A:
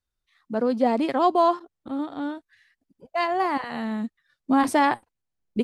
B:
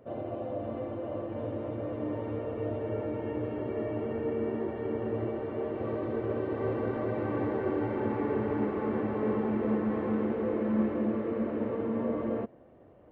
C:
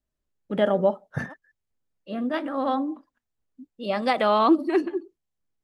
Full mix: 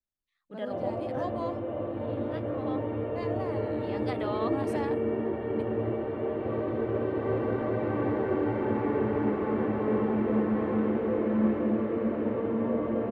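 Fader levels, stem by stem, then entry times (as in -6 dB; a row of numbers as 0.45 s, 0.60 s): -17.5 dB, +2.5 dB, -14.5 dB; 0.00 s, 0.65 s, 0.00 s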